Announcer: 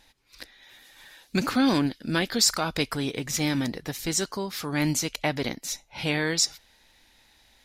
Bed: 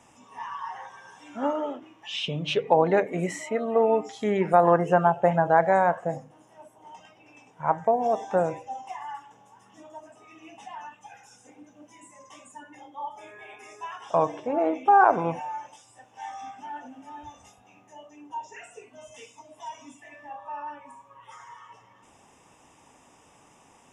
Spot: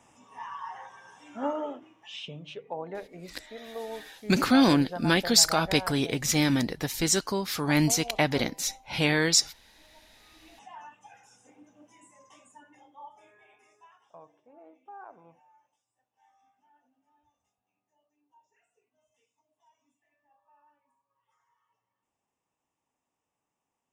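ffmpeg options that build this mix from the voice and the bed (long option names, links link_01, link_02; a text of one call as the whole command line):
ffmpeg -i stem1.wav -i stem2.wav -filter_complex "[0:a]adelay=2950,volume=2dB[link_01];[1:a]volume=7.5dB,afade=type=out:start_time=1.65:duration=0.89:silence=0.223872,afade=type=in:start_time=10.09:duration=0.68:silence=0.281838,afade=type=out:start_time=11.81:duration=2.38:silence=0.0668344[link_02];[link_01][link_02]amix=inputs=2:normalize=0" out.wav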